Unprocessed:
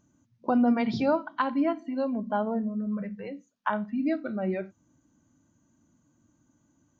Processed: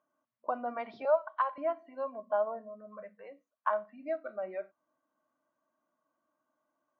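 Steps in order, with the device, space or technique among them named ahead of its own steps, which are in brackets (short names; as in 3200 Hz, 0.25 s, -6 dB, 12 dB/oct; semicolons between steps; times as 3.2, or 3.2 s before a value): tin-can telephone (BPF 660–2000 Hz; small resonant body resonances 620/1100 Hz, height 12 dB, ringing for 35 ms); 1.05–1.58 steep high-pass 430 Hz 36 dB/oct; gain -6 dB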